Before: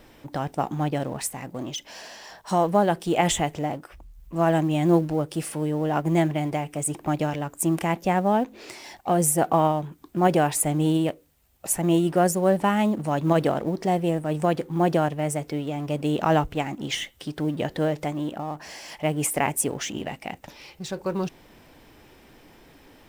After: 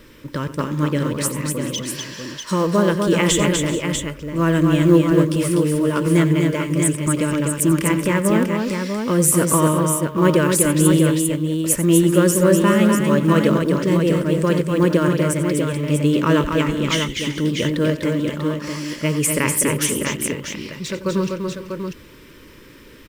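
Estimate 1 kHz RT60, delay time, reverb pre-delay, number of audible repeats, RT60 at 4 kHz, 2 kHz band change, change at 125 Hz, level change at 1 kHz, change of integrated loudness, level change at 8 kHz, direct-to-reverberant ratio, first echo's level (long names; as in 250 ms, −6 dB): no reverb audible, 90 ms, no reverb audible, 5, no reverb audible, +8.0 dB, +8.0 dB, −0.5 dB, +6.5 dB, +8.5 dB, no reverb audible, −14.0 dB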